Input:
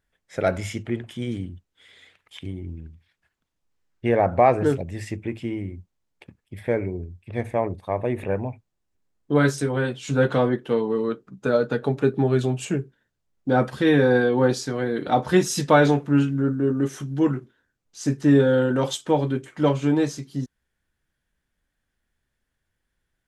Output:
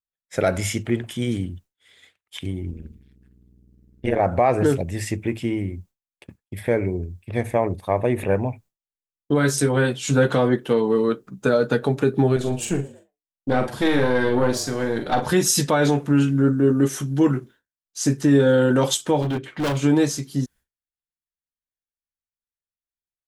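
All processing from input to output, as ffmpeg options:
-filter_complex "[0:a]asettb=1/sr,asplit=3[a][b][c];[a]atrim=end=2.714[d];[b]atrim=start=2.71:end=4.2,asetpts=PTS-STARTPTS,afade=t=in:d=0.004:c=qsin,afade=t=out:st=1.486:d=0.004:c=qsin,aeval=exprs='val(0)+0.00447*(sin(2*PI*60*n/s)+sin(2*PI*2*60*n/s)/2+sin(2*PI*3*60*n/s)/3+sin(2*PI*4*60*n/s)/4+sin(2*PI*5*60*n/s)/5)':c=same,tremolo=f=140:d=0.889[e];[c]atrim=start=4.196[f];[d][e]acrossfade=d=0.004:c1=hsin:c2=qsin[g];[g][f]acrossfade=d=0.004:c1=qsin:c2=hsin,asettb=1/sr,asplit=3[h][i][j];[h]atrim=end=12.364[k];[i]atrim=start=12.36:end=15.26,asetpts=PTS-STARTPTS,afade=t=in:d=0.004:c=qsin,afade=t=out:st=2.896:d=0.004:c=qsin,aeval=exprs='(tanh(4.47*val(0)+0.75)-tanh(0.75))/4.47':c=same,asplit=2[l][m];[m]adelay=44,volume=-7.5dB[n];[l][n]amix=inputs=2:normalize=0,atrim=end_sample=127890,asplit=4[o][p][q][r];[p]adelay=114,afreqshift=100,volume=-21dB[s];[q]adelay=228,afreqshift=200,volume=-28.7dB[t];[r]adelay=342,afreqshift=300,volume=-36.5dB[u];[o][s][t][u]amix=inputs=4:normalize=0,atrim=end_sample=127890[v];[j]atrim=start=15.256[w];[k][v]acrossfade=d=0.004:c1=hsin:c2=qsin[x];[x][w]acrossfade=d=0.004:c1=qsin:c2=hsin,asettb=1/sr,asplit=3[y][z][aa];[y]atrim=end=19.224[ab];[z]atrim=start=19.22:end=19.77,asetpts=PTS-STARTPTS,afade=t=in:d=0.004:c=qsin,afade=t=out:st=0.546:d=0.004:c=qsin,highshelf=f=5.2k:t=q:w=1.5:g=-12.5,volume=25dB,asoftclip=hard,volume=-25dB[ac];[aa]atrim=start=19.766[ad];[ab][ac]acrossfade=d=0.004:c1=hsin:c2=qsin[ae];[ae][ad]acrossfade=d=0.004:c1=qsin:c2=hsin,agate=range=-33dB:threshold=-45dB:ratio=3:detection=peak,highshelf=f=7.3k:g=12,alimiter=limit=-13dB:level=0:latency=1:release=122,volume=4.5dB"

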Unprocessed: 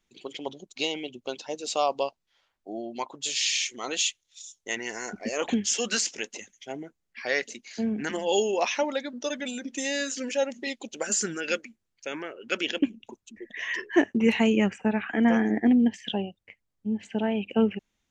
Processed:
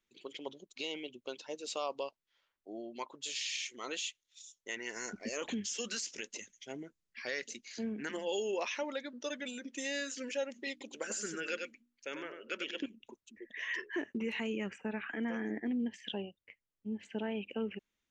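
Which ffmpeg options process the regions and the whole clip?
-filter_complex "[0:a]asettb=1/sr,asplit=3[a][b][c];[a]atrim=end=4.964[d];[b]atrim=start=4.96:end=7.79,asetpts=PTS-STARTPTS,afade=t=in:d=0.004:c=qsin,afade=t=out:st=2.826:d=0.004:c=qsin,lowpass=7.5k,bass=f=250:g=7,treble=f=4k:g=9[e];[c]atrim=start=7.786[f];[d][e]acrossfade=d=0.004:c1=hsin:c2=qsin[g];[g][f]acrossfade=d=0.004:c1=qsin:c2=hsin,asettb=1/sr,asplit=3[h][i][j];[h]atrim=end=10.714[k];[i]atrim=start=10.71:end=12.86,asetpts=PTS-STARTPTS,afade=t=in:d=0.004:c=qsin,afade=t=out:st=2.146:d=0.004:c=qsin,bandreject=f=60:t=h:w=6,bandreject=f=120:t=h:w=6,bandreject=f=180:t=h:w=6,bandreject=f=240:t=h:w=6,bandreject=f=300:t=h:w=6,aecho=1:1:96:0.422,atrim=end_sample=94815[l];[j]atrim=start=12.856[m];[k][l]acrossfade=d=0.004:c1=hsin:c2=qsin[n];[n][m]acrossfade=d=0.004:c1=qsin:c2=hsin,equalizer=f=750:w=3.1:g=-8,alimiter=limit=-19.5dB:level=0:latency=1:release=99,bass=f=250:g=-7,treble=f=4k:g=-4,volume=-6dB"

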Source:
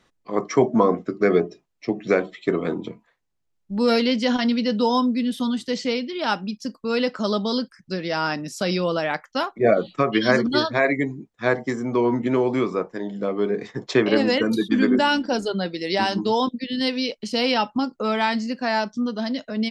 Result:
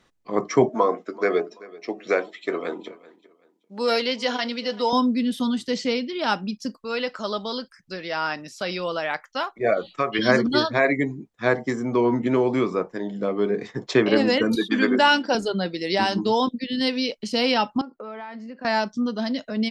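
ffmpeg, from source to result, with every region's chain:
-filter_complex "[0:a]asettb=1/sr,asplit=3[a][b][c];[a]atrim=end=0.694[d];[b]atrim=start=0.69:end=4.93,asetpts=PTS-STARTPTS,afade=t=in:d=0.004:c=qsin,afade=t=out:st=4.236:d=0.004:c=qsin,highpass=440,aecho=1:1:383|766:0.0944|0.0264,atrim=end_sample=186984[e];[c]atrim=start=4.926[f];[d][e]acrossfade=d=0.004:c1=hsin:c2=qsin[g];[g][f]acrossfade=d=0.004:c1=qsin:c2=hsin,asettb=1/sr,asplit=3[h][i][j];[h]atrim=end=6.774[k];[i]atrim=start=6.77:end=10.19,asetpts=PTS-STARTPTS,afade=t=in:d=0.004:c=qsin,afade=t=out:st=3.416:d=0.004:c=qsin,acrossover=split=4600[l][m];[m]acompressor=threshold=-47dB:ratio=4:attack=1:release=60[n];[l][n]amix=inputs=2:normalize=0,equalizer=f=190:w=0.53:g=-10.5[o];[j]atrim=start=10.186[p];[k][o]acrossfade=d=0.004:c1=hsin:c2=qsin[q];[q][p]acrossfade=d=0.004:c1=qsin:c2=hsin,asettb=1/sr,asplit=3[r][s][t];[r]atrim=end=14.554[u];[s]atrim=start=14.55:end=15.35,asetpts=PTS-STARTPTS,afade=t=in:d=0.004:c=qsin,afade=t=out:st=0.796:d=0.004:c=qsin,highpass=f=650:p=1,highshelf=f=7.5k:g=-9.5,acontrast=37[v];[t]atrim=start=15.346[w];[u][v]acrossfade=d=0.004:c1=hsin:c2=qsin[x];[x][w]acrossfade=d=0.004:c1=qsin:c2=hsin,asettb=1/sr,asplit=3[y][z][aa];[y]atrim=end=17.814[ab];[z]atrim=start=17.81:end=18.65,asetpts=PTS-STARTPTS,afade=t=in:d=0.004:c=qsin,afade=t=out:st=0.836:d=0.004:c=qsin,acrossover=split=240 2200:gain=0.224 1 0.126[ac][ad][ae];[ac][ad][ae]amix=inputs=3:normalize=0,acompressor=threshold=-35dB:ratio=4:attack=3.2:release=140:knee=1:detection=peak[af];[aa]atrim=start=18.646[ag];[ab][af]acrossfade=d=0.004:c1=hsin:c2=qsin[ah];[ah][ag]acrossfade=d=0.004:c1=qsin:c2=hsin"

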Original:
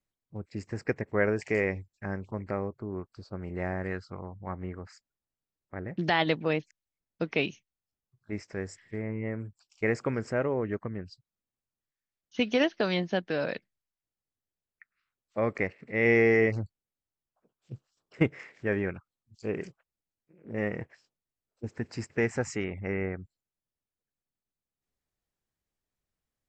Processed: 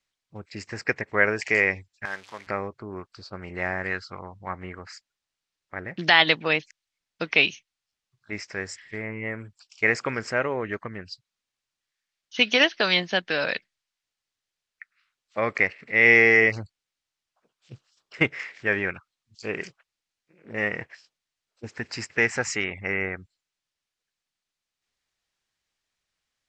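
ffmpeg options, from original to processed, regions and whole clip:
-filter_complex "[0:a]asettb=1/sr,asplit=3[a][b][c];[a]atrim=end=2.054[d];[b]atrim=start=2.05:end=2.47,asetpts=PTS-STARTPTS,afade=t=in:d=0.004:c=qsin,afade=t=out:st=0.416:d=0.004:c=qsin,aeval=exprs='val(0)+0.5*0.00447*sgn(val(0))':c=same,highpass=f=940:p=1[e];[c]atrim=start=2.466[f];[d][e]acrossfade=d=0.004:c1=hsin:c2=qsin[g];[g][f]acrossfade=d=0.004:c1=qsin:c2=hsin,lowpass=5.7k,tiltshelf=f=920:g=-9,volume=6dB"

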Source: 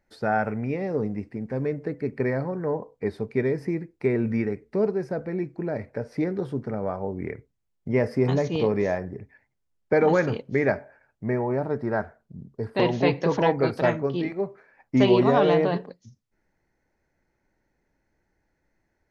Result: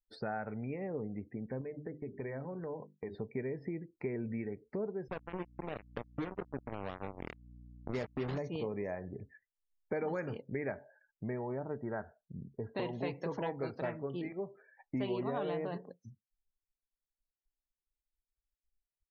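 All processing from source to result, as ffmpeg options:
-filter_complex "[0:a]asettb=1/sr,asplit=3[a][b][c];[a]atrim=end=1.614[d];[b]atrim=start=1.61:end=3.15,asetpts=PTS-STARTPTS,afade=t=in:d=0.004:c=qsin,afade=t=out:st=1.536:d=0.004:c=qsin,agate=range=-19dB:threshold=-42dB:ratio=16:release=100:detection=peak,bandreject=f=50:t=h:w=6,bandreject=f=100:t=h:w=6,bandreject=f=150:t=h:w=6,bandreject=f=200:t=h:w=6,bandreject=f=250:t=h:w=6,bandreject=f=300:t=h:w=6,bandreject=f=350:t=h:w=6,bandreject=f=400:t=h:w=6,acompressor=threshold=-41dB:ratio=1.5:attack=3.2:release=140:knee=1:detection=peak[e];[c]atrim=start=3.146[f];[d][e]acrossfade=d=0.004:c1=hsin:c2=qsin[g];[g][f]acrossfade=d=0.004:c1=qsin:c2=hsin,asettb=1/sr,asplit=3[h][i][j];[h]atrim=end=5.084[k];[i]atrim=start=5.08:end=8.38,asetpts=PTS-STARTPTS,afade=t=in:d=0.004:c=qsin,afade=t=out:st=3.296:d=0.004:c=qsin,acrusher=bits=3:mix=0:aa=0.5,aeval=exprs='val(0)+0.00355*(sin(2*PI*60*n/s)+sin(2*PI*2*60*n/s)/2+sin(2*PI*3*60*n/s)/3+sin(2*PI*4*60*n/s)/4+sin(2*PI*5*60*n/s)/5)':c=same[l];[j]atrim=start=8.376[m];[k][l]acrossfade=d=0.004:c1=hsin:c2=qsin[n];[n][m]acrossfade=d=0.004:c1=qsin:c2=hsin,acompressor=threshold=-37dB:ratio=2.5,afftdn=nr=34:nf=-54,volume=-3dB"

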